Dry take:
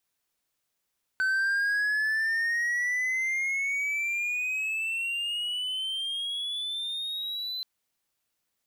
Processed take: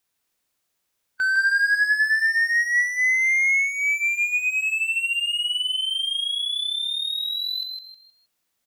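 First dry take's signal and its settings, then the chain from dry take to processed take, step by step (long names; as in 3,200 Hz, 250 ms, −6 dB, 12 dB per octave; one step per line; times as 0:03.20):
pitch glide with a swell triangle, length 6.43 s, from 1,520 Hz, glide +17 semitones, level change −8 dB, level −21 dB
harmonic and percussive parts rebalanced harmonic +5 dB
on a send: echo with shifted repeats 157 ms, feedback 32%, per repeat +50 Hz, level −4.5 dB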